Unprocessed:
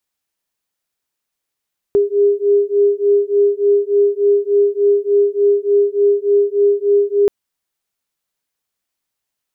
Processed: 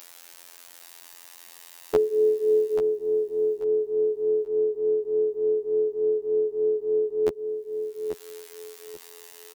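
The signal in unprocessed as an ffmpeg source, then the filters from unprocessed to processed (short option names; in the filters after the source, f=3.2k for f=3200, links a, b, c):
-f lavfi -i "aevalsrc='0.2*(sin(2*PI*404*t)+sin(2*PI*407.4*t))':d=5.33:s=44100"
-filter_complex "[0:a]acrossover=split=150|260[a][b][c];[c]acompressor=mode=upward:threshold=-17dB:ratio=2.5[d];[a][b][d]amix=inputs=3:normalize=0,afftfilt=real='hypot(re,im)*cos(PI*b)':imag='0':win_size=2048:overlap=0.75,aecho=1:1:837|1674|2511:0.398|0.0995|0.0249"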